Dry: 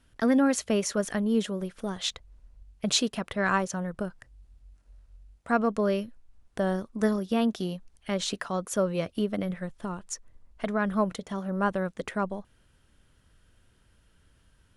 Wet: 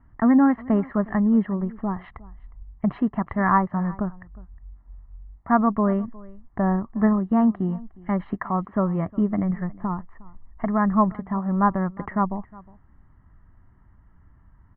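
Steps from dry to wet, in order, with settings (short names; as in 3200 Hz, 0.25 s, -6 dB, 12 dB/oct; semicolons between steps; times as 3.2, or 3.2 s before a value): steep low-pass 1700 Hz 36 dB/oct; comb 1 ms, depth 74%; echo 0.36 s -22 dB; gain +5 dB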